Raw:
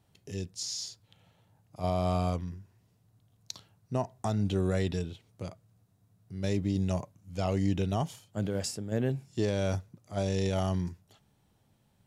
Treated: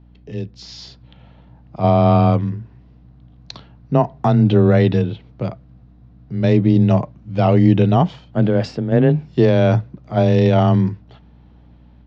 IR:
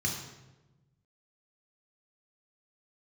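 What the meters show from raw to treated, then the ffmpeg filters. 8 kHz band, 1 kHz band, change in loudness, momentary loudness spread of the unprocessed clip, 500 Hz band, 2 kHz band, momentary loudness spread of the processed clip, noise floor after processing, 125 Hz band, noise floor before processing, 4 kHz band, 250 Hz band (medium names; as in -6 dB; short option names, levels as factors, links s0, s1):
no reading, +16.0 dB, +16.0 dB, 14 LU, +15.5 dB, +13.5 dB, 16 LU, -47 dBFS, +16.0 dB, -69 dBFS, +7.0 dB, +16.5 dB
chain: -af "lowpass=f=4600:w=0.5412,lowpass=f=4600:w=1.3066,aemphasis=mode=reproduction:type=75fm,dynaudnorm=f=480:g=3:m=2.24,afreqshift=16,aeval=exprs='val(0)+0.002*(sin(2*PI*60*n/s)+sin(2*PI*2*60*n/s)/2+sin(2*PI*3*60*n/s)/3+sin(2*PI*4*60*n/s)/4+sin(2*PI*5*60*n/s)/5)':c=same,volume=2.51"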